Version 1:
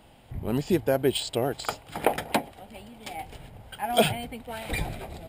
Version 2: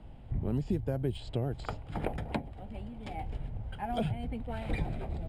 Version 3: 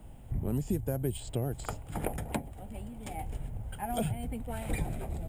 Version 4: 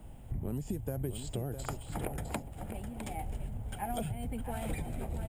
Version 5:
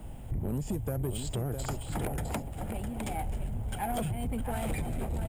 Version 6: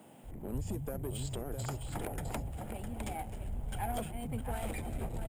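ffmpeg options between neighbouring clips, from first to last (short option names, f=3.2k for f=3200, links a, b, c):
-filter_complex "[0:a]aemphasis=mode=reproduction:type=riaa,acrossover=split=150|5200[a][b][c];[a]acompressor=threshold=-28dB:ratio=4[d];[b]acompressor=threshold=-28dB:ratio=4[e];[c]acompressor=threshold=-56dB:ratio=4[f];[d][e][f]amix=inputs=3:normalize=0,volume=-5dB"
-af "aexciter=amount=10.3:drive=2.6:freq=6.4k"
-filter_complex "[0:a]acompressor=threshold=-32dB:ratio=6,asplit=2[a][b];[b]aecho=0:1:657:0.376[c];[a][c]amix=inputs=2:normalize=0"
-af "asoftclip=type=tanh:threshold=-32.5dB,volume=6.5dB"
-filter_complex "[0:a]acrossover=split=170[a][b];[a]adelay=230[c];[c][b]amix=inputs=2:normalize=0,volume=-4dB"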